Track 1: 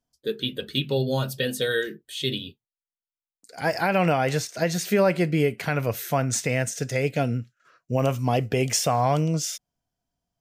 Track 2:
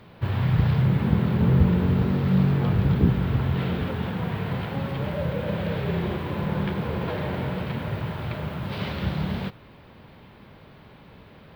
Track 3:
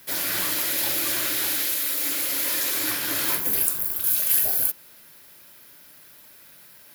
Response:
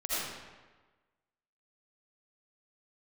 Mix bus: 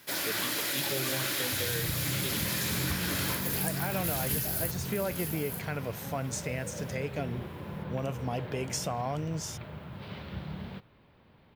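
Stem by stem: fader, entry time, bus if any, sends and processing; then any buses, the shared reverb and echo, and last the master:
-9.5 dB, 0.00 s, no send, no echo send, dry
-12.0 dB, 1.30 s, no send, no echo send, dry
-1.0 dB, 0.00 s, no send, echo send -9 dB, high shelf 11000 Hz -11.5 dB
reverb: off
echo: echo 0.888 s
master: compressor 3:1, threshold -28 dBFS, peak gain reduction 6 dB

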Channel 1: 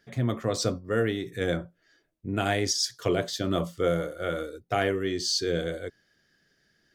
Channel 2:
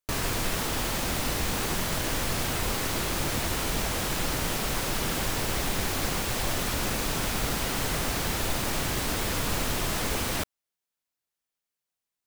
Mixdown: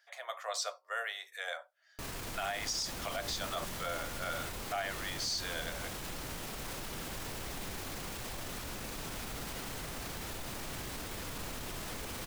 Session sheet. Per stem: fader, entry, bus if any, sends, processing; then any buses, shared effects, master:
-2.0 dB, 0.00 s, no send, steep high-pass 630 Hz 48 dB/oct
-6.5 dB, 1.90 s, no send, limiter -25.5 dBFS, peak gain reduction 10.5 dB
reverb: off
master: limiter -26 dBFS, peak gain reduction 10.5 dB

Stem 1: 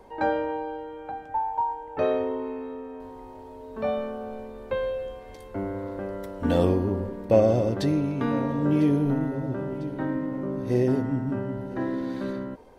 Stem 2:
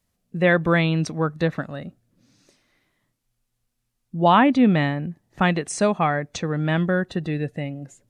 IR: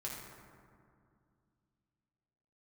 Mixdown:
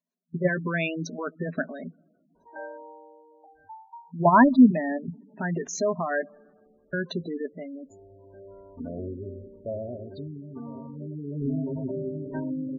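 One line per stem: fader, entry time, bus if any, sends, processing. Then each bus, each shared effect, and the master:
11.26 s -14.5 dB -> 11.46 s -4.5 dB, 2.35 s, send -18.5 dB, auto duck -13 dB, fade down 0.50 s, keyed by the second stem
-5.0 dB, 0.00 s, muted 6.26–6.93, send -23.5 dB, FFT band-pass 170–7300 Hz; sample leveller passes 2; level quantiser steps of 11 dB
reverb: on, RT60 2.3 s, pre-delay 4 ms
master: spectral gate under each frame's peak -15 dB strong; ripple EQ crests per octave 1.5, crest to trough 12 dB

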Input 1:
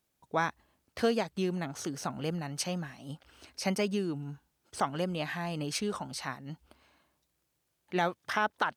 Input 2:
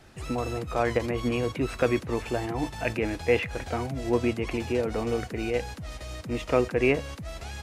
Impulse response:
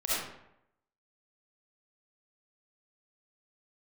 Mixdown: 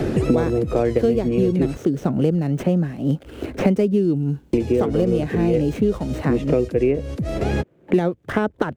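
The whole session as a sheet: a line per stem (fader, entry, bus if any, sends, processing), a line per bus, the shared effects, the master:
+0.5 dB, 0.00 s, no send, median filter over 9 samples
+2.0 dB, 0.00 s, muted 1.77–4.53, no send, auto duck -9 dB, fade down 1.25 s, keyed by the first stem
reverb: off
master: resonant low shelf 640 Hz +11.5 dB, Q 1.5; three-band squash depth 100%

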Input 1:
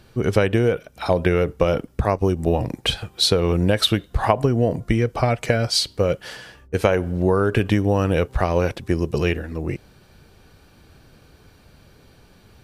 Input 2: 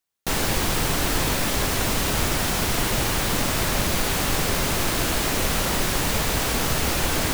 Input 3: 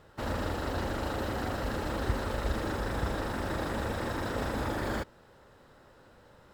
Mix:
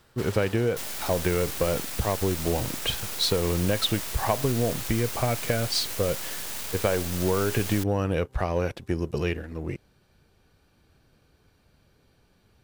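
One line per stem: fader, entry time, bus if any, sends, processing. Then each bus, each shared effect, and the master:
-10.0 dB, 0.00 s, no send, dry
-15.0 dB, 0.50 s, no send, tilt +2.5 dB/oct; half-wave rectifier
-2.0 dB, 0.00 s, no send, tilt +3.5 dB/oct; wavefolder -34 dBFS; auto duck -11 dB, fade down 0.90 s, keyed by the first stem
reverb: off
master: sample leveller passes 1

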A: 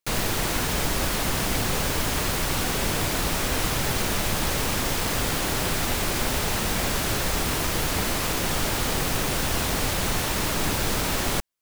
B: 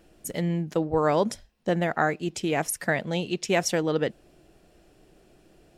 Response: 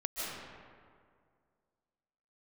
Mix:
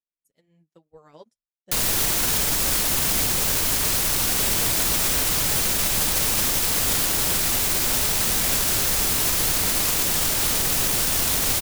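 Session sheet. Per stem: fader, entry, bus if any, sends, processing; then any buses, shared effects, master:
+1.0 dB, 1.65 s, no send, bit-crush 5-bit
-19.0 dB, 0.00 s, no send, flange 1.1 Hz, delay 4 ms, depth 4.6 ms, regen -20%; upward expander 2.5:1, over -43 dBFS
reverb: off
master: high shelf 3600 Hz +11.5 dB; limiter -12 dBFS, peak gain reduction 7.5 dB

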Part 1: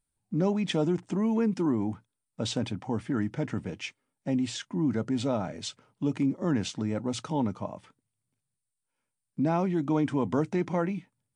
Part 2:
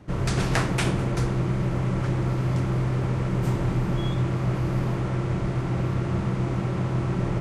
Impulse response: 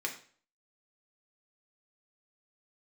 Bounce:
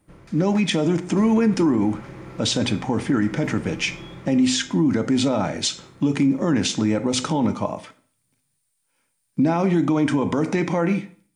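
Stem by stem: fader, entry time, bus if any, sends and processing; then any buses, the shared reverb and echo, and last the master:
+3.0 dB, 0.00 s, send -5.5 dB, high shelf 4500 Hz +6 dB; AGC gain up to 5.5 dB
1 s -18 dB -> 1.22 s -7 dB -> 4.14 s -7 dB -> 4.75 s -17.5 dB, 0.00 s, send -6.5 dB, auto duck -12 dB, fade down 0.25 s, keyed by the first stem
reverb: on, RT60 0.45 s, pre-delay 3 ms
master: limiter -11.5 dBFS, peak gain reduction 8.5 dB

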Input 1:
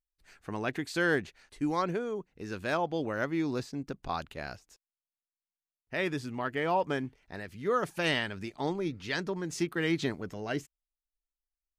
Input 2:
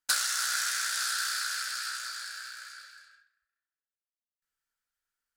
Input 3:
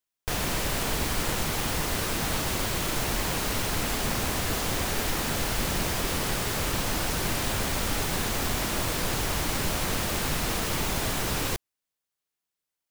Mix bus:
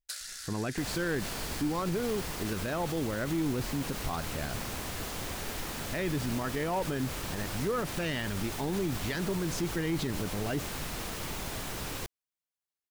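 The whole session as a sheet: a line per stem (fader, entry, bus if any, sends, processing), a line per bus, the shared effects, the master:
-2.5 dB, 0.00 s, no send, low shelf 270 Hz +10 dB; sample leveller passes 1
-12.0 dB, 0.00 s, no send, steep high-pass 230 Hz; band shelf 1100 Hz -8.5 dB 1.2 oct
-9.0 dB, 0.50 s, no send, dry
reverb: off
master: limiter -23 dBFS, peak gain reduction 8.5 dB

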